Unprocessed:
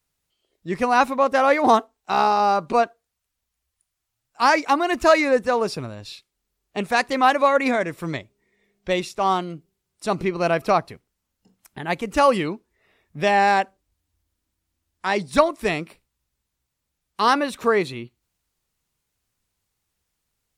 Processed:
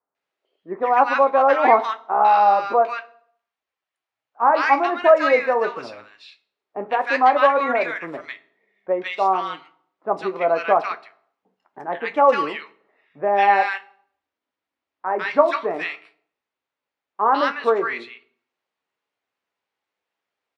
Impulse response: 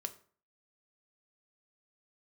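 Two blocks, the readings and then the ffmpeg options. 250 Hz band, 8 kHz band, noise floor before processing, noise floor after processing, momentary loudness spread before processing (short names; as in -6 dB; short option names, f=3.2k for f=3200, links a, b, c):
-6.0 dB, under -15 dB, -80 dBFS, under -85 dBFS, 14 LU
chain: -filter_complex "[0:a]flanger=delay=9.9:depth=7.4:regen=-54:speed=0.1:shape=sinusoidal,highpass=500,lowpass=2.2k,acrossover=split=1300[a][b];[b]adelay=150[c];[a][c]amix=inputs=2:normalize=0,asplit=2[d][e];[1:a]atrim=start_sample=2205,asetrate=30429,aresample=44100[f];[e][f]afir=irnorm=-1:irlink=0,volume=-2.5dB[g];[d][g]amix=inputs=2:normalize=0,volume=3.5dB"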